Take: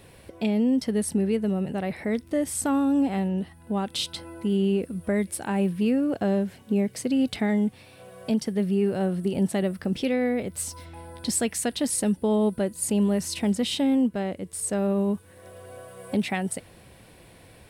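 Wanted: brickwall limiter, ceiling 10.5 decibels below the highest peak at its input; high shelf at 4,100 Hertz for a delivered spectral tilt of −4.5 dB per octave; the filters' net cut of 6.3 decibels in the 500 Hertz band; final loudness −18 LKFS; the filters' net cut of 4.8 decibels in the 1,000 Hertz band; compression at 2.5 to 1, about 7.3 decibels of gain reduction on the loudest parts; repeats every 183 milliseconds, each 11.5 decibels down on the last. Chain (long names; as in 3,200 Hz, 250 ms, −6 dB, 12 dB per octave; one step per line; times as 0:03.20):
parametric band 500 Hz −7.5 dB
parametric band 1,000 Hz −3.5 dB
high-shelf EQ 4,100 Hz +3.5 dB
downward compressor 2.5 to 1, threshold −32 dBFS
brickwall limiter −30 dBFS
repeating echo 183 ms, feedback 27%, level −11.5 dB
level +19.5 dB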